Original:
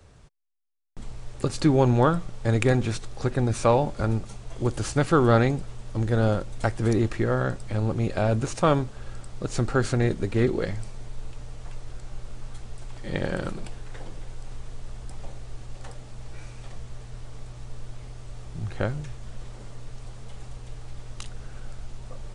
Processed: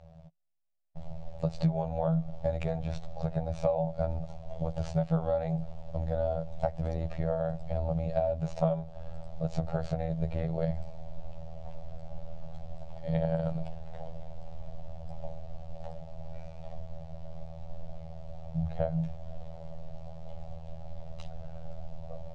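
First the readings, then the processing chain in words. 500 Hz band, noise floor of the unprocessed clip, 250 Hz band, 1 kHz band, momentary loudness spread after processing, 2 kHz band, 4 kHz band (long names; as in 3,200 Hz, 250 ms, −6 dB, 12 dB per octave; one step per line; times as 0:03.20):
−6.0 dB, −43 dBFS, −8.5 dB, −9.5 dB, 16 LU, −18.5 dB, −15.0 dB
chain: running median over 3 samples
drawn EQ curve 100 Hz 0 dB, 170 Hz +11 dB, 240 Hz −19 dB, 390 Hz −15 dB, 610 Hz +13 dB, 1,100 Hz −8 dB, 1,600 Hz −11 dB, 2,500 Hz −7 dB, 4,100 Hz −5 dB
downward compressor 12 to 1, threshold −22 dBFS, peak gain reduction 14 dB
phases set to zero 81.4 Hz
high-frequency loss of the air 140 metres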